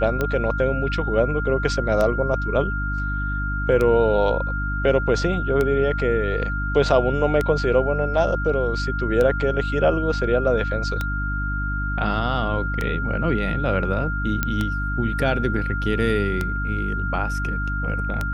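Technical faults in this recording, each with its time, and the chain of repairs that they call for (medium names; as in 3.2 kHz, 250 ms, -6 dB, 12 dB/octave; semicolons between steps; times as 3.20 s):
hum 50 Hz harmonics 6 -26 dBFS
tick 33 1/3 rpm -10 dBFS
whine 1.4 kHz -27 dBFS
14.43 s: pop -7 dBFS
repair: de-click; band-stop 1.4 kHz, Q 30; de-hum 50 Hz, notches 6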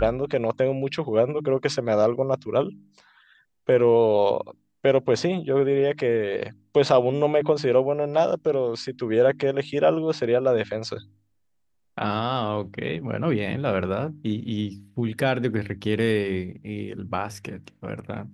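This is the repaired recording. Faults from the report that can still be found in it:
14.43 s: pop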